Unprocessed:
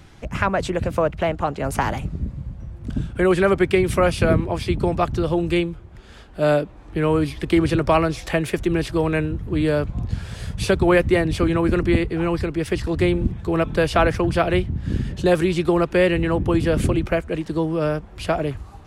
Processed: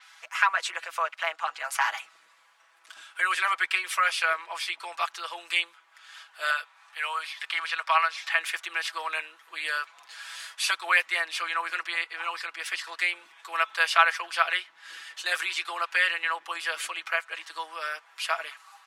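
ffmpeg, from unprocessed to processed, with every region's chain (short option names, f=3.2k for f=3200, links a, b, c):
-filter_complex "[0:a]asettb=1/sr,asplit=3[a][b][c];[a]atrim=end=6.504[d];[b]atrim=start=6.5:end=8.38,asetpts=PTS-STARTPTS,afade=t=in:d=0.004:c=qsin,afade=t=out:st=1.876:d=0.004:c=qsin,highpass=620,acrossover=split=4800[e][f];[f]acompressor=threshold=-48dB:ratio=4:attack=1:release=60[g];[e][g]amix=inputs=2:normalize=0[h];[c]atrim=start=8.376[i];[d][h]acrossfade=d=0.004:c1=hsin:c2=qsin[j];[j][i]acrossfade=d=0.004:c1=qsin:c2=hsin,highpass=f=1.1k:w=0.5412,highpass=f=1.1k:w=1.3066,aecho=1:1:6.1:0.81,adynamicequalizer=threshold=0.00562:dfrequency=6600:dqfactor=0.7:tfrequency=6600:tqfactor=0.7:attack=5:release=100:ratio=0.375:range=3:mode=cutabove:tftype=highshelf"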